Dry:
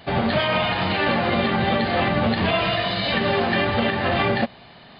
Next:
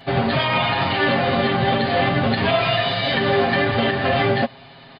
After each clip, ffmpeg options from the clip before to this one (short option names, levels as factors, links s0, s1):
-af "aecho=1:1:7.4:0.8"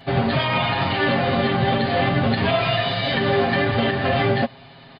-af "equalizer=f=73:w=0.3:g=3.5,volume=0.794"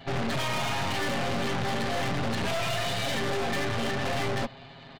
-af "acontrast=57,aeval=exprs='(tanh(15.8*val(0)+0.8)-tanh(0.8))/15.8':c=same,volume=0.631"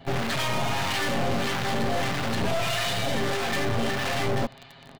-filter_complex "[0:a]asplit=2[s0][s1];[s1]acrusher=bits=5:mix=0:aa=0.000001,volume=0.631[s2];[s0][s2]amix=inputs=2:normalize=0,acrossover=split=950[s3][s4];[s3]aeval=exprs='val(0)*(1-0.5/2+0.5/2*cos(2*PI*1.6*n/s))':c=same[s5];[s4]aeval=exprs='val(0)*(1-0.5/2-0.5/2*cos(2*PI*1.6*n/s))':c=same[s6];[s5][s6]amix=inputs=2:normalize=0,volume=1.12"